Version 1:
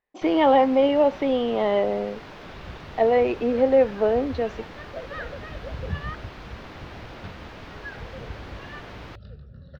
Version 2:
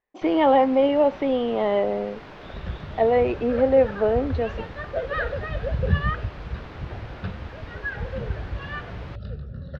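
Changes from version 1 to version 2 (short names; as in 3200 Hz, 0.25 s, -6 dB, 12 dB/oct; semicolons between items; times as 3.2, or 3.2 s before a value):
second sound +9.0 dB; master: add high shelf 5700 Hz -11 dB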